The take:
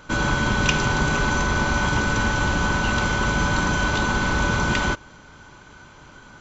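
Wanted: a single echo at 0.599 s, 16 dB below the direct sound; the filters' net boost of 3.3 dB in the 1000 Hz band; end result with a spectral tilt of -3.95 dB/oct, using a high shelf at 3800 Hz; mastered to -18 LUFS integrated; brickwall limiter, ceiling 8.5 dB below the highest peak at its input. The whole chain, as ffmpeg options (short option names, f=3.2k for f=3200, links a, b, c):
-af "equalizer=f=1k:t=o:g=4.5,highshelf=f=3.8k:g=-9,alimiter=limit=-13.5dB:level=0:latency=1,aecho=1:1:599:0.158,volume=5dB"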